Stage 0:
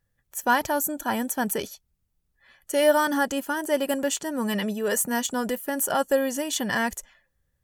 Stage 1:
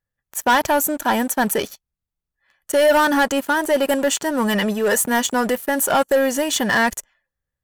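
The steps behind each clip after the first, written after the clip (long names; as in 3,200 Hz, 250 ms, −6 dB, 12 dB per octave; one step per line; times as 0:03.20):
parametric band 1,200 Hz +5.5 dB 2.7 octaves
leveller curve on the samples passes 3
level −5.5 dB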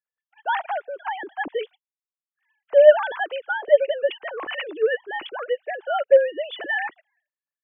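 three sine waves on the formant tracks
level −3 dB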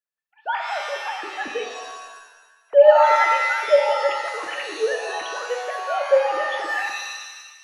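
reverb with rising layers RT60 1.2 s, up +7 semitones, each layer −2 dB, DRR 3.5 dB
level −2.5 dB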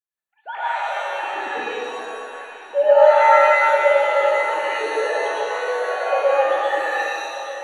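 Butterworth band-reject 5,100 Hz, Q 3.5
on a send: delay that swaps between a low-pass and a high-pass 413 ms, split 1,000 Hz, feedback 70%, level −8.5 dB
on the sum: dense smooth reverb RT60 1.6 s, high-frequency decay 0.45×, pre-delay 95 ms, DRR −8.5 dB
level −7 dB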